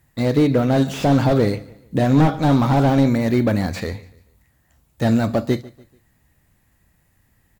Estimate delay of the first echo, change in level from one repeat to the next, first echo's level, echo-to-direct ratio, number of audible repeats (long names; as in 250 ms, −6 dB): 145 ms, −8.0 dB, −21.0 dB, −20.5 dB, 2